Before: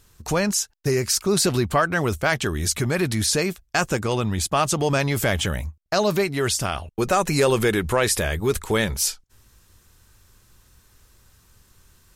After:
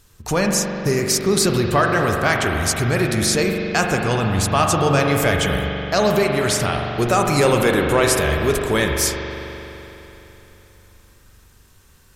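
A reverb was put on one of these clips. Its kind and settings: spring tank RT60 3.5 s, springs 42 ms, chirp 80 ms, DRR 1 dB; gain +2 dB

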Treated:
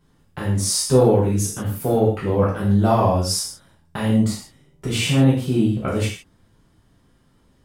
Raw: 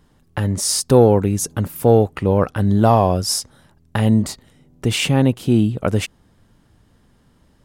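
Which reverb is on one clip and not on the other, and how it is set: non-linear reverb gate 0.19 s falling, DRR -7 dB; gain -10 dB

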